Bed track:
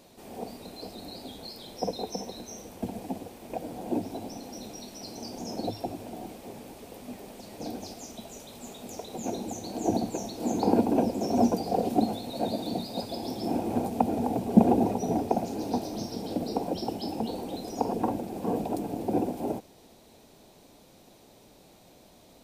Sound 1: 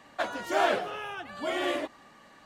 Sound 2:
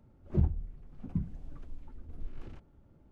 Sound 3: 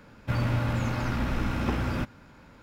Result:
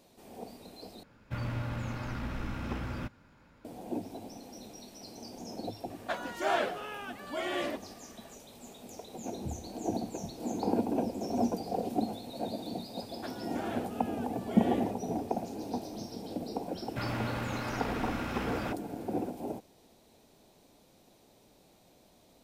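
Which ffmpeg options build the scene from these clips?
-filter_complex "[3:a]asplit=2[a][b];[1:a]asplit=2[c][d];[0:a]volume=-6.5dB[e];[c]acontrast=36[f];[2:a]highpass=66[g];[d]alimiter=limit=-17.5dB:level=0:latency=1:release=71[h];[b]lowshelf=f=190:g=-11[i];[e]asplit=2[j][k];[j]atrim=end=1.034[l];[a]atrim=end=2.62,asetpts=PTS-STARTPTS,volume=-8.5dB[m];[k]atrim=start=3.646[n];[f]atrim=end=2.45,asetpts=PTS-STARTPTS,volume=-9.5dB,afade=t=in:d=0.004:c=hsin,afade=t=out:st=2.446:d=0.004:c=hsin,adelay=5900[o];[g]atrim=end=3.11,asetpts=PTS-STARTPTS,volume=-11.5dB,afade=t=in:d=0.004:c=hsin,afade=t=out:st=3.106:d=0.004:c=hsin,adelay=9080[p];[h]atrim=end=2.45,asetpts=PTS-STARTPTS,volume=-13.5dB,afade=t=in:d=0.004:c=hsin,afade=t=out:st=2.446:d=0.004:c=hsin,adelay=13040[q];[i]atrim=end=2.62,asetpts=PTS-STARTPTS,volume=-3dB,afade=t=in:d=0.004:c=hsin,afade=t=out:st=2.616:d=0.004:c=hsin,adelay=735588S[r];[l][m]acrossfade=d=0.004:c1=hsin:c2=hsin[s];[s][n]acrossfade=d=0.004:c1=hsin:c2=hsin[t];[t][o][p][q][r]amix=inputs=5:normalize=0"

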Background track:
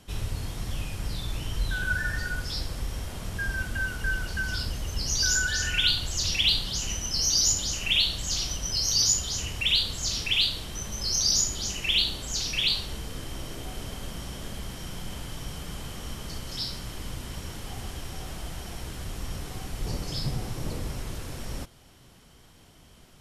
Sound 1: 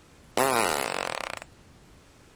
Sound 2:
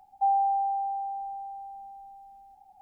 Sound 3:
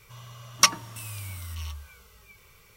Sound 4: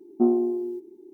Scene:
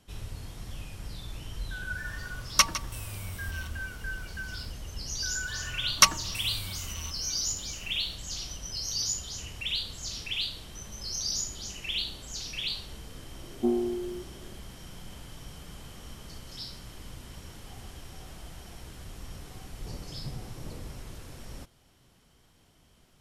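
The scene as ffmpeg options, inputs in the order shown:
-filter_complex "[3:a]asplit=2[a][b];[0:a]volume=-8dB[c];[a]asplit=2[d][e];[e]adelay=157.4,volume=-12dB,highshelf=f=4k:g=-3.54[f];[d][f]amix=inputs=2:normalize=0[g];[b]highpass=110[h];[g]atrim=end=2.76,asetpts=PTS-STARTPTS,volume=-3dB,afade=t=in:d=0.004:c=hsin,afade=t=out:st=2.756:d=0.004:c=hsin,adelay=1960[i];[h]atrim=end=2.76,asetpts=PTS-STARTPTS,afade=t=in:d=0.004:c=hsin,afade=t=out:st=2.756:d=0.004:c=hsin,adelay=5390[j];[4:a]atrim=end=1.13,asetpts=PTS-STARTPTS,volume=-6dB,afade=t=in:d=0.004:c=hsin,afade=t=out:st=1.126:d=0.004:c=hsin,adelay=13430[k];[c][i][j][k]amix=inputs=4:normalize=0"

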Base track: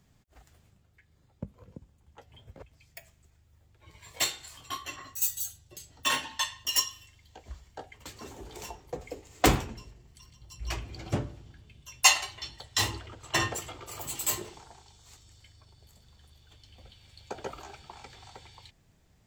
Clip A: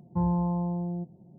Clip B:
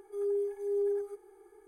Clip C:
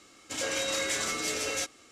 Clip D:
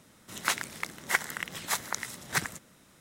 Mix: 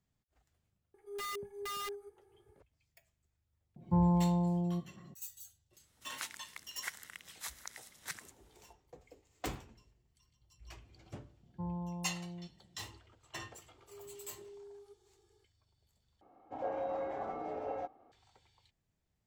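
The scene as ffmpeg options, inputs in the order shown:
-filter_complex "[2:a]asplit=2[a][b];[1:a]asplit=2[c][d];[0:a]volume=-18dB[e];[a]aeval=exprs='(mod(23.7*val(0)+1,2)-1)/23.7':c=same[f];[4:a]tiltshelf=f=1.3k:g=-5.5[g];[b]acompressor=threshold=-36dB:ratio=6:attack=3.2:release=140:knee=1:detection=peak[h];[3:a]lowpass=f=780:t=q:w=7.8[i];[e]asplit=2[j][k];[j]atrim=end=16.214[l];[i]atrim=end=1.91,asetpts=PTS-STARTPTS,volume=-8dB[m];[k]atrim=start=18.116[n];[f]atrim=end=1.67,asetpts=PTS-STARTPTS,volume=-9.5dB,afade=t=in:d=0.004:c=hsin,afade=t=out:st=1.666:d=0.004:c=hsin,adelay=940[o];[c]atrim=end=1.38,asetpts=PTS-STARTPTS,volume=-1.5dB,afade=t=in:d=0.004:c=hsin,afade=t=out:st=1.376:d=0.004:c=hsin,adelay=3760[p];[g]atrim=end=3,asetpts=PTS-STARTPTS,volume=-17dB,afade=t=in:d=0.004:c=hsin,afade=t=out:st=2.996:d=0.004:c=hsin,adelay=252693S[q];[d]atrim=end=1.38,asetpts=PTS-STARTPTS,volume=-13.5dB,afade=t=in:d=0.004:c=hsin,afade=t=out:st=1.376:d=0.004:c=hsin,adelay=11430[r];[h]atrim=end=1.67,asetpts=PTS-STARTPTS,volume=-14.5dB,afade=t=in:d=0.004:c=hsin,afade=t=out:st=1.666:d=0.004:c=hsin,adelay=13780[s];[l][m]acrossfade=d=0.004:c1=hsin:c2=hsin[t];[t][n]acrossfade=d=0.004:c1=hsin:c2=hsin[u];[u][o][p][q][r][s]amix=inputs=6:normalize=0"

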